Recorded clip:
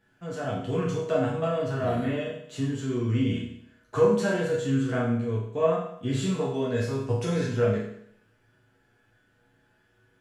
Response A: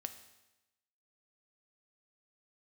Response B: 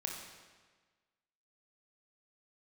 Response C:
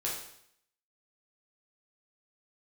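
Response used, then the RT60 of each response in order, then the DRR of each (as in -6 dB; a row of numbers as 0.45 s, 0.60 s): C; 1.0 s, 1.4 s, 0.70 s; 8.0 dB, 0.0 dB, -5.5 dB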